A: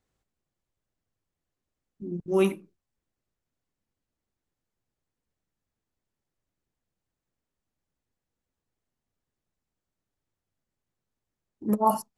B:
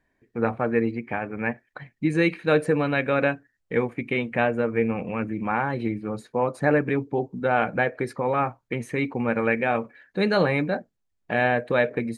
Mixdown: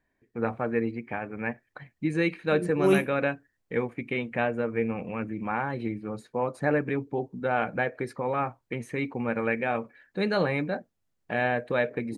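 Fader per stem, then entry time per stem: +0.5, −4.5 decibels; 0.50, 0.00 seconds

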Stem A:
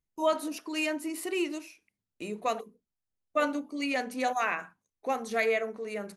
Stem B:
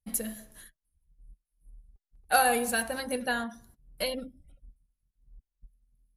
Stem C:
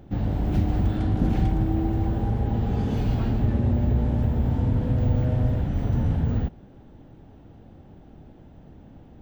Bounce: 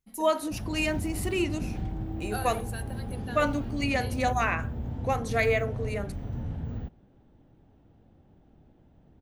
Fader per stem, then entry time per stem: +2.0, −12.5, −11.0 decibels; 0.00, 0.00, 0.40 seconds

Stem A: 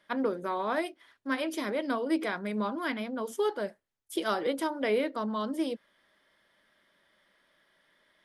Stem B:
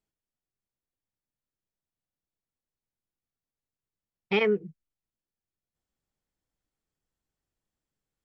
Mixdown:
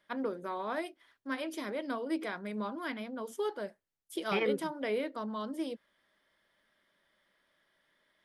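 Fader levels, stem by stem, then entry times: −5.5, −7.5 decibels; 0.00, 0.00 seconds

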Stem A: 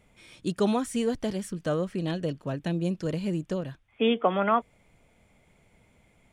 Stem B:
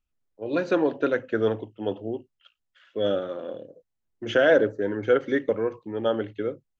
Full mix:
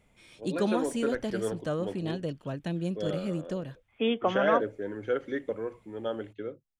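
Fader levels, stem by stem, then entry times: −3.5, −8.5 decibels; 0.00, 0.00 seconds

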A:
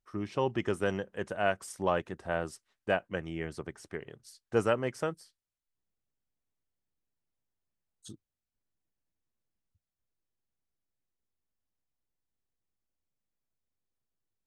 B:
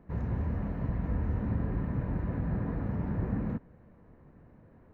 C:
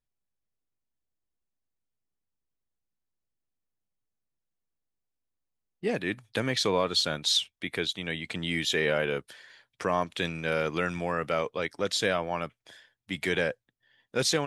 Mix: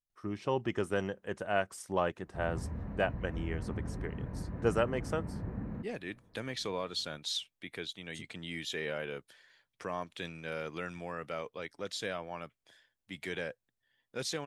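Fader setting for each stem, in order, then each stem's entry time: −2.0, −7.5, −10.5 decibels; 0.10, 2.25, 0.00 seconds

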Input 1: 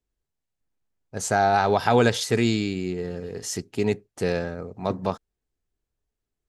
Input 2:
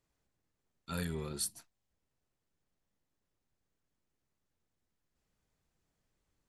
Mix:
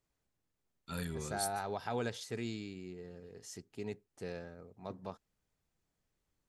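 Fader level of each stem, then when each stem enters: −18.0, −2.5 decibels; 0.00, 0.00 seconds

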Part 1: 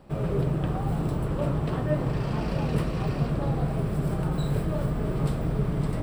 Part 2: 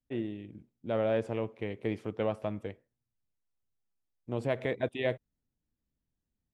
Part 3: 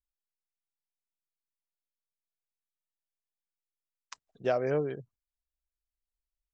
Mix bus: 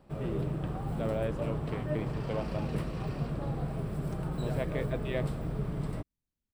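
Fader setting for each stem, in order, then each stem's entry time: −7.5, −4.5, −14.5 decibels; 0.00, 0.10, 0.00 seconds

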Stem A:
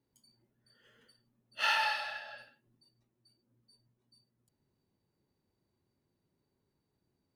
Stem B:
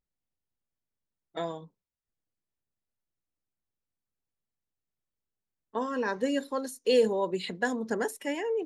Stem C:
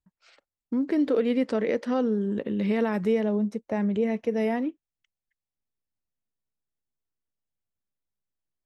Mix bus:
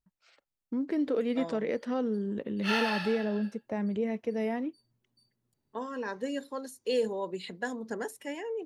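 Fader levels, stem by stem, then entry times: −1.0, −5.5, −5.5 decibels; 1.05, 0.00, 0.00 seconds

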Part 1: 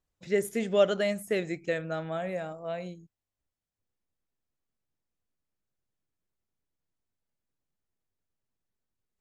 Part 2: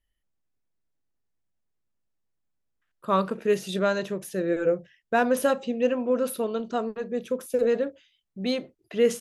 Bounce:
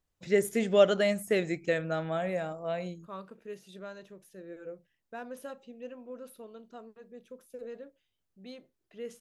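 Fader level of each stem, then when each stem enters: +1.5, −19.5 decibels; 0.00, 0.00 seconds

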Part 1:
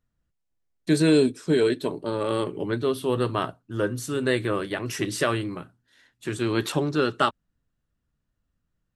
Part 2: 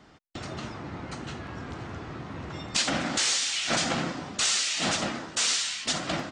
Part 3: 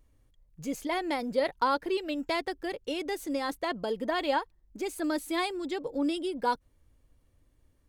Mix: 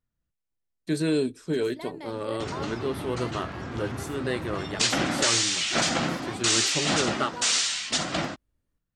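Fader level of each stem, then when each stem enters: −6.0, +2.0, −11.5 decibels; 0.00, 2.05, 0.90 seconds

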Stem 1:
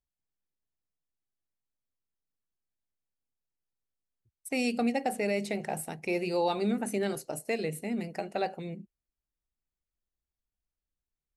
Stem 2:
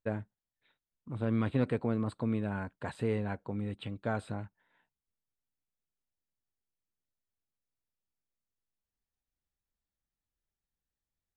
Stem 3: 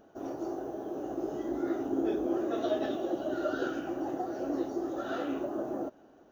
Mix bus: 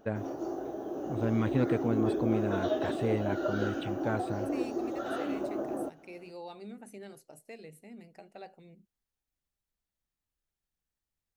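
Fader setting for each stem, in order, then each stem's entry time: −16.0, +1.0, 0.0 decibels; 0.00, 0.00, 0.00 seconds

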